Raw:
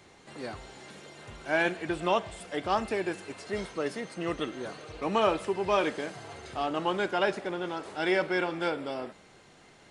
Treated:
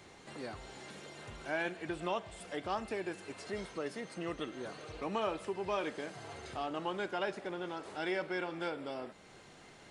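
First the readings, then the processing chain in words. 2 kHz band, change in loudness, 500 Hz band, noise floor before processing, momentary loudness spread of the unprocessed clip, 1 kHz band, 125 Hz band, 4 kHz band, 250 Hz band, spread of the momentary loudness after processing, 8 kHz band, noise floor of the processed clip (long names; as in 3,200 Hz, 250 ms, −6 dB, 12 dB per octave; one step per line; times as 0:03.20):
−8.5 dB, −8.5 dB, −8.5 dB, −56 dBFS, 16 LU, −8.5 dB, −7.0 dB, −8.0 dB, −7.5 dB, 12 LU, −5.5 dB, −57 dBFS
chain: downward compressor 1.5 to 1, threshold −48 dBFS, peak gain reduction 10.5 dB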